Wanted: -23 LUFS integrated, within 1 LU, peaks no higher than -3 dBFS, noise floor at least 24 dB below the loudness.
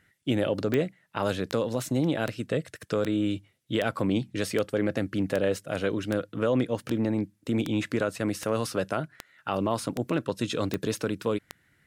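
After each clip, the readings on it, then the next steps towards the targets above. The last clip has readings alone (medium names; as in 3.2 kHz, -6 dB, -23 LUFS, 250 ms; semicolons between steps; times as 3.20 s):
clicks found 15; loudness -29.0 LUFS; peak level -11.5 dBFS; loudness target -23.0 LUFS
-> de-click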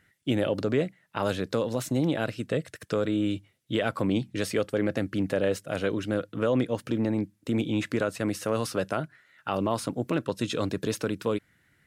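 clicks found 0; loudness -29.0 LUFS; peak level -13.5 dBFS; loudness target -23.0 LUFS
-> trim +6 dB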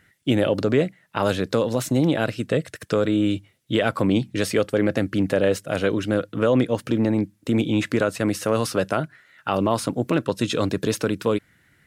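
loudness -23.0 LUFS; peak level -7.5 dBFS; noise floor -61 dBFS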